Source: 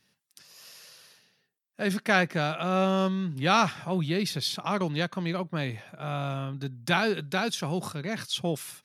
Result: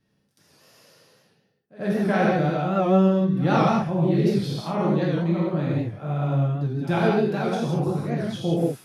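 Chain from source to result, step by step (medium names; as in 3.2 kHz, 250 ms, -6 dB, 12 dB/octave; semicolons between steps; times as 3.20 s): tilt shelf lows +9.5 dB; pre-echo 85 ms -18.5 dB; gated-style reverb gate 210 ms flat, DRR -5.5 dB; warped record 78 rpm, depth 100 cents; trim -5 dB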